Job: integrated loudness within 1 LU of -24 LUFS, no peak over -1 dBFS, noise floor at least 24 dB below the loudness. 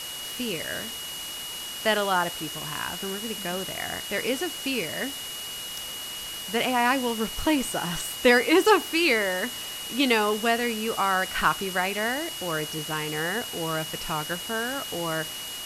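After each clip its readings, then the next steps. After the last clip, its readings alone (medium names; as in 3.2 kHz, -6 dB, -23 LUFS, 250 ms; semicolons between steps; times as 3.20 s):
steady tone 2.9 kHz; tone level -36 dBFS; noise floor -36 dBFS; noise floor target -50 dBFS; loudness -26.0 LUFS; peak level -6.0 dBFS; loudness target -24.0 LUFS
-> band-stop 2.9 kHz, Q 30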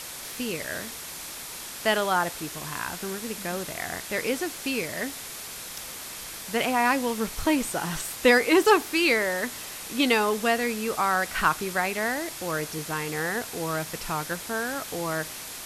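steady tone not found; noise floor -39 dBFS; noise floor target -51 dBFS
-> noise print and reduce 12 dB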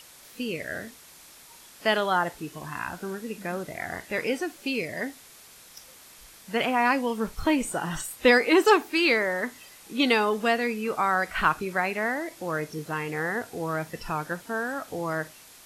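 noise floor -51 dBFS; loudness -26.5 LUFS; peak level -6.5 dBFS; loudness target -24.0 LUFS
-> trim +2.5 dB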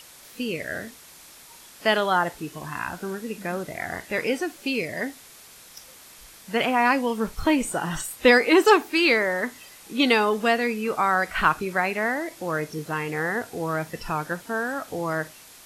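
loudness -24.0 LUFS; peak level -4.0 dBFS; noise floor -48 dBFS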